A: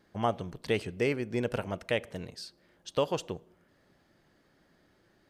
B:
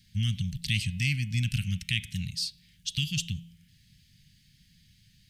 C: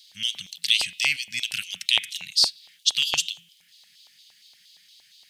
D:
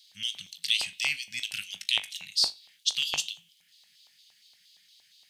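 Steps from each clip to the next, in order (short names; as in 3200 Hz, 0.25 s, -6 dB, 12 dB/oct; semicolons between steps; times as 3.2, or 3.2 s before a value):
inverse Chebyshev band-stop 440–970 Hz, stop band 70 dB; de-hum 168.3 Hz, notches 23; in parallel at -2.5 dB: limiter -33 dBFS, peak gain reduction 10.5 dB; on the sum: gain +7.5 dB
LFO high-pass square 4.3 Hz 800–3700 Hz; gain +8 dB
resonator 51 Hz, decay 0.21 s, harmonics all, mix 60%; gain -2.5 dB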